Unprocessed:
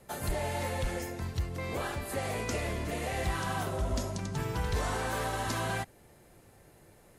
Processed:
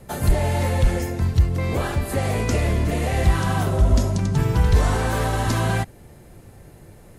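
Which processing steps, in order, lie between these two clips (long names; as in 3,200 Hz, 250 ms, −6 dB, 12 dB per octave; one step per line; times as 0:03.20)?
low-shelf EQ 270 Hz +10 dB
level +7 dB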